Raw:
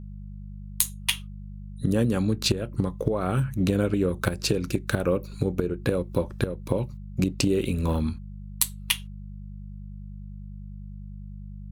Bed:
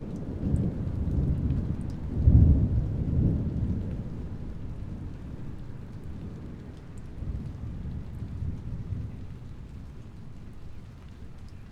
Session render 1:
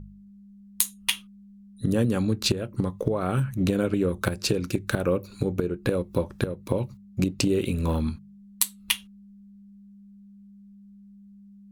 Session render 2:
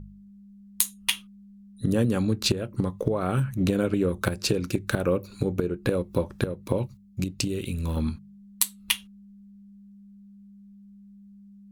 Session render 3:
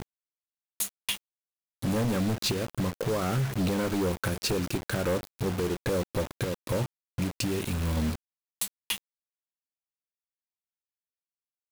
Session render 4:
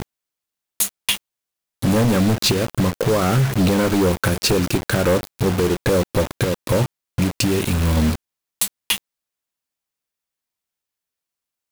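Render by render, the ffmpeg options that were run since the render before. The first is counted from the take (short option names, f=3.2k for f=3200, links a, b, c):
-af "bandreject=f=50:t=h:w=4,bandreject=f=100:t=h:w=4,bandreject=f=150:t=h:w=4"
-filter_complex "[0:a]asettb=1/sr,asplit=3[a][b][c];[a]atrim=end=6.874[d];[b]atrim=start=6.87:end=7.97,asetpts=PTS-STARTPTS,afade=t=in:d=0.004:c=qsin,afade=t=out:st=1.096:d=0.004:c=qsin,equalizer=f=610:w=0.34:g=-9[e];[c]atrim=start=7.966[f];[d][e]acrossfade=d=0.004:c1=hsin:c2=qsin[g];[g][f]acrossfade=d=0.004:c1=qsin:c2=hsin"
-af "asoftclip=type=hard:threshold=-22dB,acrusher=bits=5:mix=0:aa=0.000001"
-af "volume=10.5dB"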